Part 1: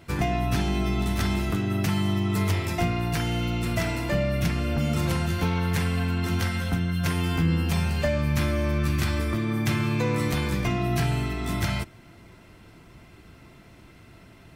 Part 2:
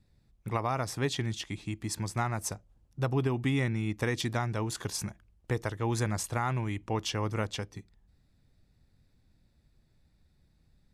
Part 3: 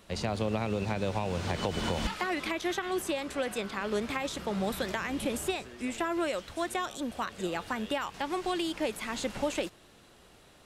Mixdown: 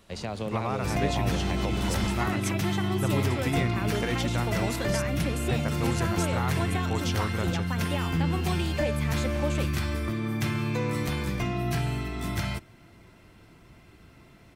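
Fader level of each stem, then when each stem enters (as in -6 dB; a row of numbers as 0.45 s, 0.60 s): -3.5 dB, -1.0 dB, -2.0 dB; 0.75 s, 0.00 s, 0.00 s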